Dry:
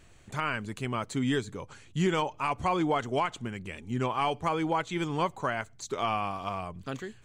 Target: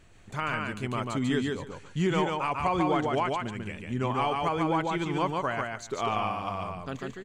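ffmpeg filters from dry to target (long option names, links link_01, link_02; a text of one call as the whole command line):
ffmpeg -i in.wav -filter_complex "[0:a]highshelf=frequency=5000:gain=-5,asplit=2[link_01][link_02];[link_02]aecho=0:1:144|288|432:0.708|0.113|0.0181[link_03];[link_01][link_03]amix=inputs=2:normalize=0" out.wav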